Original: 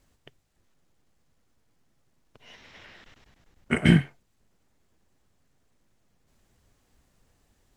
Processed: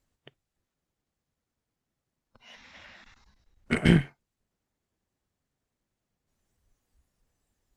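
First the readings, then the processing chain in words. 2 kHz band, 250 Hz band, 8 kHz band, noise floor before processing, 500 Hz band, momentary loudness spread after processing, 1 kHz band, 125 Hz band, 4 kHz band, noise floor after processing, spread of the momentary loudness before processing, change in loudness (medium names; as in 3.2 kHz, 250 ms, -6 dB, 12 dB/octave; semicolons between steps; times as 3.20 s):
-2.0 dB, -2.0 dB, -1.5 dB, -70 dBFS, +0.5 dB, 14 LU, -1.0 dB, -2.0 dB, -2.0 dB, under -85 dBFS, 7 LU, -2.0 dB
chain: single-diode clipper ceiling -19 dBFS; spectral noise reduction 11 dB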